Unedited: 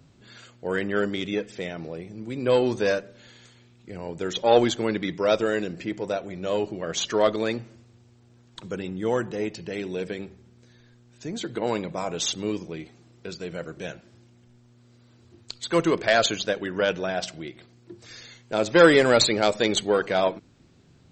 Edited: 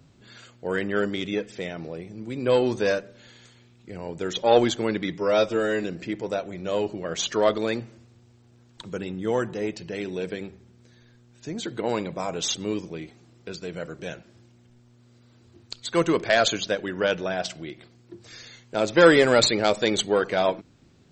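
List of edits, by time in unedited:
5.18–5.62 s: stretch 1.5×

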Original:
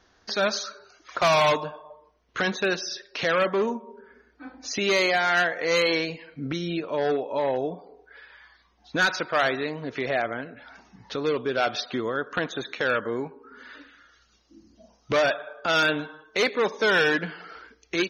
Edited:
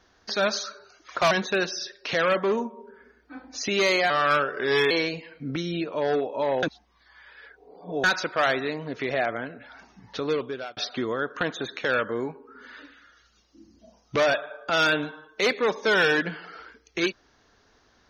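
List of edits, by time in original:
1.31–2.41 s: delete
5.20–5.87 s: speed 83%
7.59–9.00 s: reverse
11.26–11.73 s: fade out

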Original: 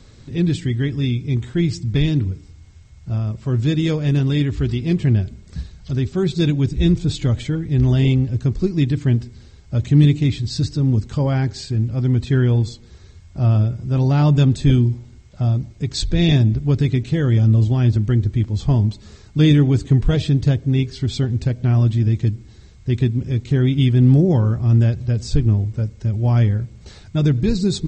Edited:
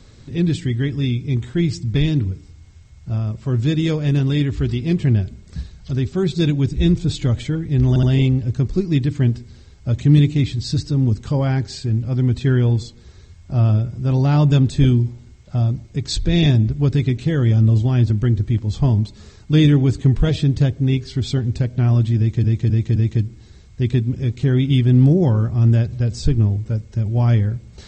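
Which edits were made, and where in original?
7.89 s: stutter 0.07 s, 3 plays
22.04–22.30 s: loop, 4 plays

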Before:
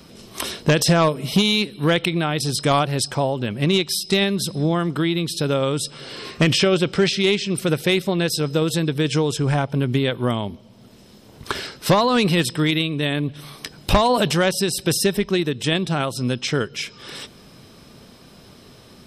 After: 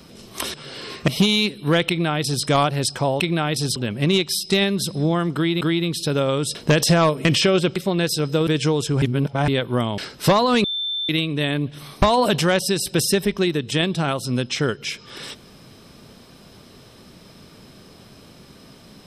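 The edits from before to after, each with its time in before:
0.54–1.24 s: swap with 5.89–6.43 s
2.04–2.60 s: copy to 3.36 s
4.95–5.21 s: loop, 2 plays
6.94–7.97 s: delete
8.68–8.97 s: delete
9.52–9.98 s: reverse
10.48–11.60 s: delete
12.26–12.71 s: bleep 3.55 kHz -22.5 dBFS
13.64–13.94 s: delete

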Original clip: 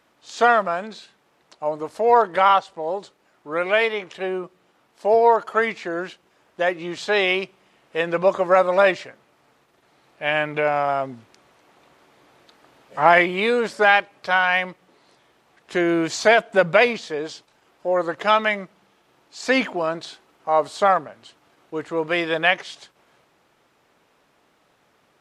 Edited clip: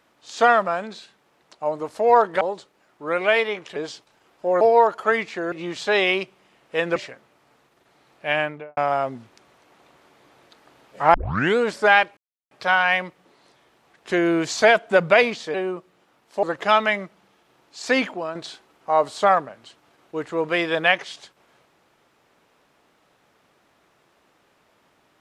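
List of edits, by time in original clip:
2.41–2.86 s: delete
4.21–5.10 s: swap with 17.17–18.02 s
6.01–6.73 s: delete
8.17–8.93 s: delete
10.29–10.74 s: studio fade out
13.11 s: tape start 0.43 s
14.14 s: insert silence 0.34 s
19.45–19.94 s: fade out, to -8 dB

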